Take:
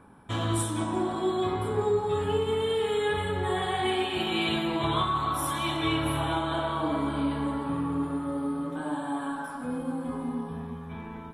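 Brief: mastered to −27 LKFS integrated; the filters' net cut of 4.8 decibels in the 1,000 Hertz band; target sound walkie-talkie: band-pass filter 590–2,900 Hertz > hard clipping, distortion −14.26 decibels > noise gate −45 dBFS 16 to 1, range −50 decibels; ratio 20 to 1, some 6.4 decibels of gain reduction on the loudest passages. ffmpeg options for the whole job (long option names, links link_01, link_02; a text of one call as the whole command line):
ffmpeg -i in.wav -af "equalizer=frequency=1000:width_type=o:gain=-5,acompressor=threshold=-29dB:ratio=20,highpass=590,lowpass=2900,asoftclip=type=hard:threshold=-35.5dB,agate=range=-50dB:threshold=-45dB:ratio=16,volume=13.5dB" out.wav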